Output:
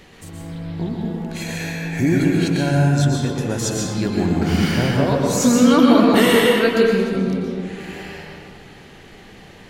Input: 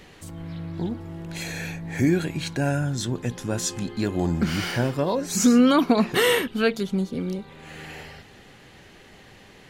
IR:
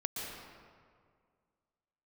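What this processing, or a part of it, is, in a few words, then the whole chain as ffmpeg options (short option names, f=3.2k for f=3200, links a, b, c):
stairwell: -filter_complex "[1:a]atrim=start_sample=2205[a];[0:a][a]afir=irnorm=-1:irlink=0,asettb=1/sr,asplit=3[b][c][d];[b]atrim=end=7.164[e];[c]atrim=start=7.16:end=7.8,asetpts=PTS-STARTPTS,afade=t=in:d=0.004:c=qsin,afade=t=out:st=0.636:d=0.004:c=qsin,lowpass=11k[f];[d]atrim=start=7.796[g];[e][f]acrossfade=d=0.004:c1=hsin:c2=qsin[h];[h][g]acrossfade=d=0.004:c1=qsin:c2=hsin,volume=3dB"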